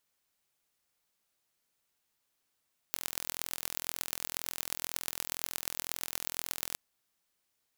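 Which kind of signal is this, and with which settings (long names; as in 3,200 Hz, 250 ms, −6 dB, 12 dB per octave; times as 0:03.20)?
impulse train 42 per second, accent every 5, −4.5 dBFS 3.81 s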